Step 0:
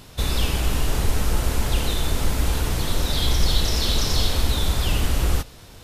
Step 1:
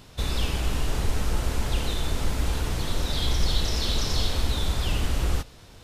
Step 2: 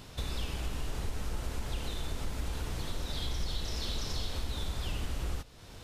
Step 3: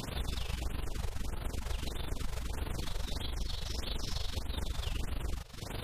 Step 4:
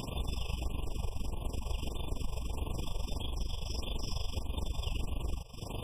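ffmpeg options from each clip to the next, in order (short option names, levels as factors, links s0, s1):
-af "equalizer=f=13000:w=0.86:g=-6.5,volume=0.631"
-af "acompressor=threshold=0.0112:ratio=2"
-af "acompressor=threshold=0.00794:ratio=12,tremolo=f=24:d=0.75,afftfilt=real='re*(1-between(b*sr/1024,230*pow(7000/230,0.5+0.5*sin(2*PI*1.6*pts/sr))/1.41,230*pow(7000/230,0.5+0.5*sin(2*PI*1.6*pts/sr))*1.41))':imag='im*(1-between(b*sr/1024,230*pow(7000/230,0.5+0.5*sin(2*PI*1.6*pts/sr))/1.41,230*pow(7000/230,0.5+0.5*sin(2*PI*1.6*pts/sr))*1.41))':win_size=1024:overlap=0.75,volume=4.73"
-af "afftfilt=real='re*eq(mod(floor(b*sr/1024/1200),2),0)':imag='im*eq(mod(floor(b*sr/1024/1200),2),0)':win_size=1024:overlap=0.75,volume=1.12"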